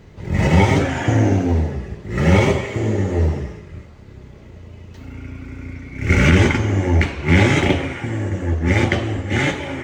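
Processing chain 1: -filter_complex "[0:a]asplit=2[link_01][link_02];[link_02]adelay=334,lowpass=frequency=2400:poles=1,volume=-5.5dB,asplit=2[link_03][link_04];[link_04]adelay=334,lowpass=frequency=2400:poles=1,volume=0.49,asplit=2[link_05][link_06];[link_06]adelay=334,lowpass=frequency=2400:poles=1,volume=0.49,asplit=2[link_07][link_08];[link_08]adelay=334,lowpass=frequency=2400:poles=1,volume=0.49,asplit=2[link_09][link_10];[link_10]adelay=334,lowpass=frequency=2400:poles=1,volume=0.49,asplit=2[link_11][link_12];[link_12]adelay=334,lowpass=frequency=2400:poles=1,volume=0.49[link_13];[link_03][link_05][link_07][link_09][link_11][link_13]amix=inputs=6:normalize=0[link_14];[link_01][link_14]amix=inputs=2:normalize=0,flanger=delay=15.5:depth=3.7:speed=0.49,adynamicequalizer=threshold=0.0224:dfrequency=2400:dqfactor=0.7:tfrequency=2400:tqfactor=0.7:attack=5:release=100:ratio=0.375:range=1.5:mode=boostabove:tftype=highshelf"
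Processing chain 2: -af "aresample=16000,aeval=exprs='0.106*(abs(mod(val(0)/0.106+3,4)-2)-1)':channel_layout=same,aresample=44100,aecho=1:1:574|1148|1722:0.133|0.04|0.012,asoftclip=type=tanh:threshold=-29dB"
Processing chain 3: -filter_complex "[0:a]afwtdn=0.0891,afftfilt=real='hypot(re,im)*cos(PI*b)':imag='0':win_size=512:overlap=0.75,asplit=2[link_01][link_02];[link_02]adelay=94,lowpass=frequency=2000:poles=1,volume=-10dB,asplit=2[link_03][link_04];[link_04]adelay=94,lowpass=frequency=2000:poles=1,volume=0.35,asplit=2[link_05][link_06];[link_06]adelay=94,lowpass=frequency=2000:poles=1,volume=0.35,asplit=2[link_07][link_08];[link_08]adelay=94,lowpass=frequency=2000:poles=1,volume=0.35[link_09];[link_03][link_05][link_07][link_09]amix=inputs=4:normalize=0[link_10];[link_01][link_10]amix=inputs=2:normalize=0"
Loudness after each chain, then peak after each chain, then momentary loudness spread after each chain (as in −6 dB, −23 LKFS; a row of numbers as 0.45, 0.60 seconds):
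−20.0, −32.0, −25.5 LKFS; −3.0, −29.0, −3.5 dBFS; 20, 10, 15 LU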